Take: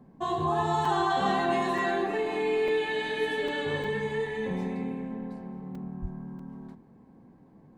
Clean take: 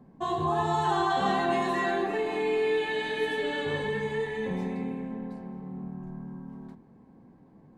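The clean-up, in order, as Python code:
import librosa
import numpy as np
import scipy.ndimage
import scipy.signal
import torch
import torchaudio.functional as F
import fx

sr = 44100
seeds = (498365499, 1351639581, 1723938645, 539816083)

y = fx.highpass(x, sr, hz=140.0, slope=24, at=(6.01, 6.13), fade=0.02)
y = fx.fix_interpolate(y, sr, at_s=(0.85, 1.78, 2.68, 3.48, 3.84, 5.75, 6.39), length_ms=3.5)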